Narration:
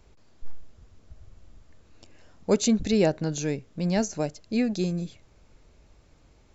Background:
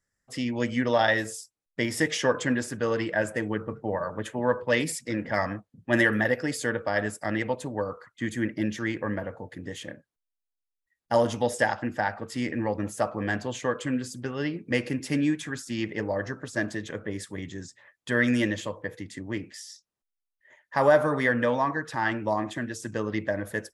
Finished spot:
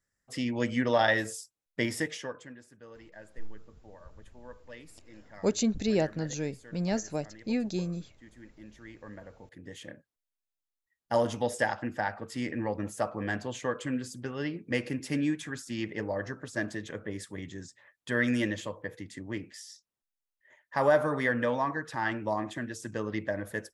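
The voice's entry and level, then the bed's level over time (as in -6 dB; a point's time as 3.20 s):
2.95 s, -5.0 dB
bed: 1.88 s -2 dB
2.56 s -23.5 dB
8.52 s -23.5 dB
10.01 s -4 dB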